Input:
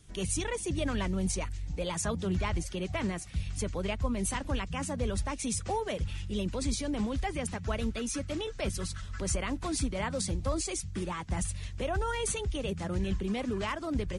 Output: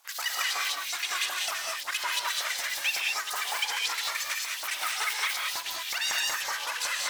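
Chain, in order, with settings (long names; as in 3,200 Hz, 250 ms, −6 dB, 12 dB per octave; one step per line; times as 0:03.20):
low-pass filter 6,800 Hz 24 dB per octave
bass and treble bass −12 dB, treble +1 dB
hum removal 55.95 Hz, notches 7
full-wave rectification
auto-filter high-pass saw up 2.7 Hz 390–2,700 Hz
reverb whose tail is shaped and stops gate 470 ms rising, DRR −1.5 dB
wrong playback speed 7.5 ips tape played at 15 ips
level +6 dB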